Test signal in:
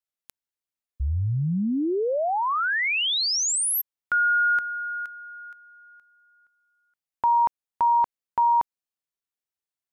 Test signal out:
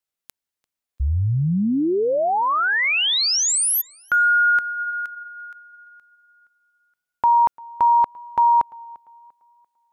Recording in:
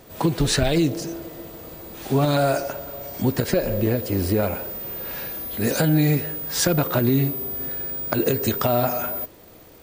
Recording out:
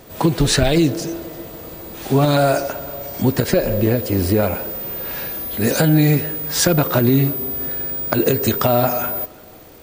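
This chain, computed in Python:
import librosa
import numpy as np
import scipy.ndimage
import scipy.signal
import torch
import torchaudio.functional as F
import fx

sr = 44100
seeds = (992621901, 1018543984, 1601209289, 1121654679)

y = fx.echo_tape(x, sr, ms=344, feedback_pct=36, wet_db=-23.0, lp_hz=4900.0, drive_db=1.0, wow_cents=22)
y = y * 10.0 ** (4.5 / 20.0)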